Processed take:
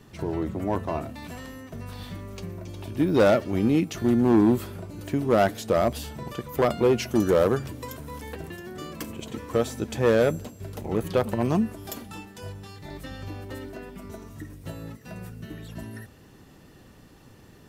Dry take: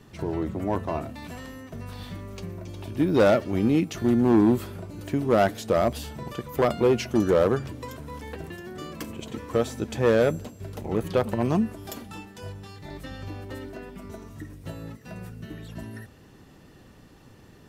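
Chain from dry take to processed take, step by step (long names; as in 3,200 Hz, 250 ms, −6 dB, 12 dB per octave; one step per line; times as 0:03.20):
high-shelf EQ 8,700 Hz +3 dB, from 0:07.02 +10.5 dB, from 0:08.35 +5 dB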